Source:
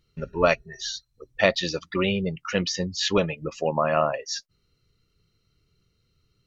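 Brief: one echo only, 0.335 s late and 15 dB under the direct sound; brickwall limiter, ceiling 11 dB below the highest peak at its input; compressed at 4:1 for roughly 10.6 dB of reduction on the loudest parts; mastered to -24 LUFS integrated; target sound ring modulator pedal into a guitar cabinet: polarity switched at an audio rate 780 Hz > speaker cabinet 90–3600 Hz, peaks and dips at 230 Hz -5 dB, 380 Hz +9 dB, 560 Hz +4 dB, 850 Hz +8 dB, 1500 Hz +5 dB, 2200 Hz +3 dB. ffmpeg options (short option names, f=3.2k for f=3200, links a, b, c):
-af "acompressor=threshold=-27dB:ratio=4,alimiter=limit=-22.5dB:level=0:latency=1,aecho=1:1:335:0.178,aeval=exprs='val(0)*sgn(sin(2*PI*780*n/s))':c=same,highpass=90,equalizer=f=230:t=q:w=4:g=-5,equalizer=f=380:t=q:w=4:g=9,equalizer=f=560:t=q:w=4:g=4,equalizer=f=850:t=q:w=4:g=8,equalizer=f=1.5k:t=q:w=4:g=5,equalizer=f=2.2k:t=q:w=4:g=3,lowpass=f=3.6k:w=0.5412,lowpass=f=3.6k:w=1.3066,volume=7.5dB"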